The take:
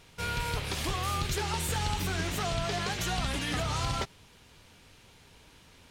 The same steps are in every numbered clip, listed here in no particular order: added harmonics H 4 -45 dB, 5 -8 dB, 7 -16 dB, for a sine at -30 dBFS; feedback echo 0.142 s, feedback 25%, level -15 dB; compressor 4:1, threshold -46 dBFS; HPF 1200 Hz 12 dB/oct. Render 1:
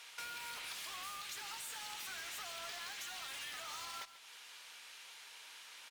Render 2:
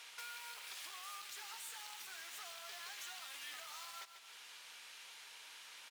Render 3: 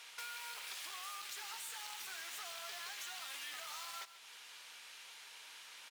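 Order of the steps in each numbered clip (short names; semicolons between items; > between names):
HPF > added harmonics > compressor > feedback echo; added harmonics > feedback echo > compressor > HPF; added harmonics > HPF > compressor > feedback echo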